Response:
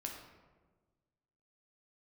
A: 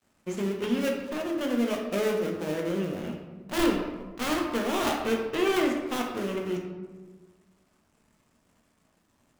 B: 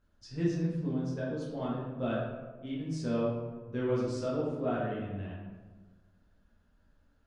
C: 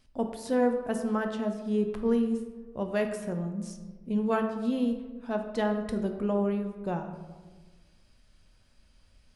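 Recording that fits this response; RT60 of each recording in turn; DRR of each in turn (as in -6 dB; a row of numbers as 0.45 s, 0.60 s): A; 1.4 s, 1.4 s, 1.4 s; 0.5 dB, -7.5 dB, 5.0 dB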